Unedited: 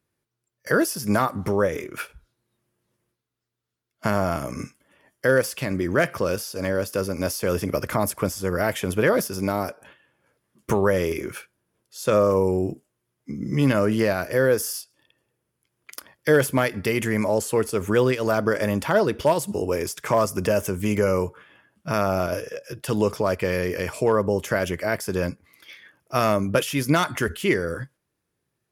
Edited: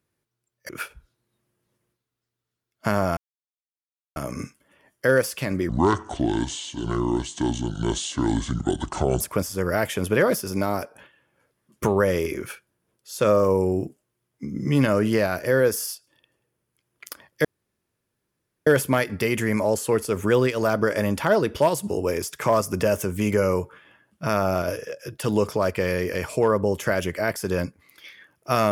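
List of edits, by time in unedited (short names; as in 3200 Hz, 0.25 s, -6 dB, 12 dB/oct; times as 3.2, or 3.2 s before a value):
0.69–1.88 cut
4.36 insert silence 0.99 s
5.89–8.07 speed 62%
16.31 insert room tone 1.22 s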